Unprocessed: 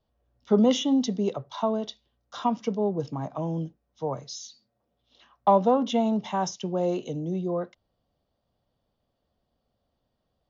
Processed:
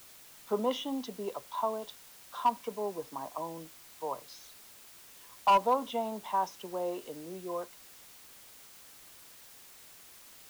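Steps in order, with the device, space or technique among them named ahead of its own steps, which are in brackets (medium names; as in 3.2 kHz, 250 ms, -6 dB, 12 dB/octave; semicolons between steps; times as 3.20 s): drive-through speaker (band-pass 380–3800 Hz; peaking EQ 1 kHz +11 dB 0.25 oct; hard clipper -12 dBFS, distortion -13 dB; white noise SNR 18 dB); trim -6.5 dB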